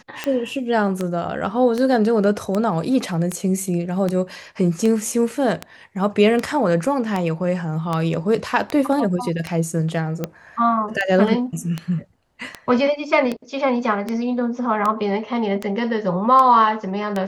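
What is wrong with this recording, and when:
tick 78 rpm -10 dBFS

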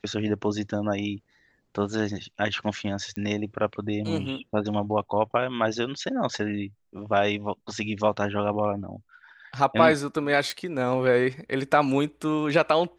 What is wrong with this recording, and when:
3.16 pop -20 dBFS
10.5 pop

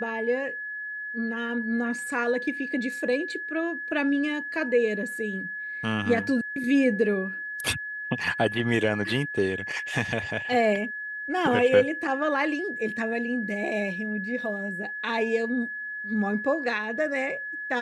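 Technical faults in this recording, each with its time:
tone 1700 Hz -32 dBFS

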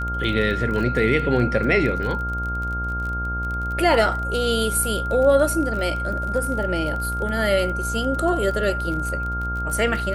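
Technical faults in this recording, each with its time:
buzz 60 Hz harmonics 26 -28 dBFS
crackle 31/s -28 dBFS
tone 1400 Hz -26 dBFS

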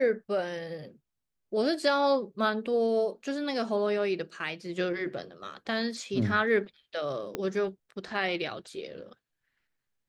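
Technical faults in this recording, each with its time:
7.35 pop -17 dBFS

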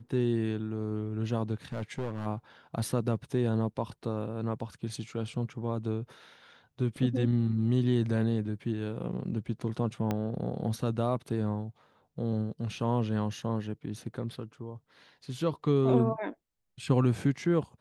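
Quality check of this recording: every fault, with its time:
1.72–2.27 clipped -29 dBFS
10.11 pop -17 dBFS

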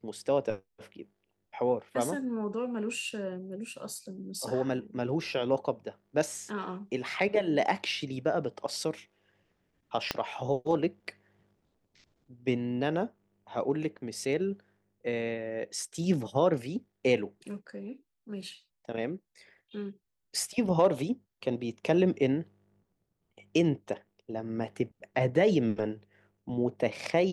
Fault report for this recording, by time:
10.11 pop -12 dBFS

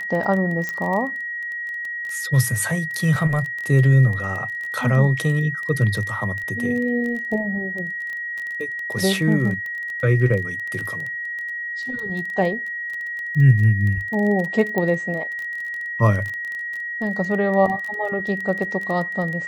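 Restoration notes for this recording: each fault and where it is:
crackle 18/s -26 dBFS
tone 1900 Hz -26 dBFS
0.69 pop -13 dBFS
14.78 pop -11 dBFS

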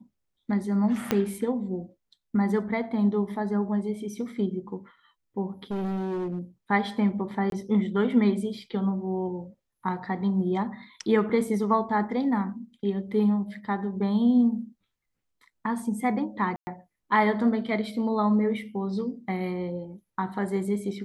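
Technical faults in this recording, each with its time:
1.11 pop -9 dBFS
5.71–6.39 clipped -27 dBFS
7.5–7.52 gap 22 ms
16.56–16.67 gap 0.11 s

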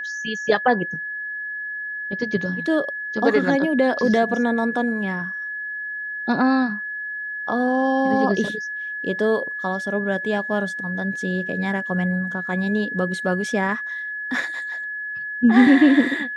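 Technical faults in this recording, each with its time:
tone 1700 Hz -27 dBFS

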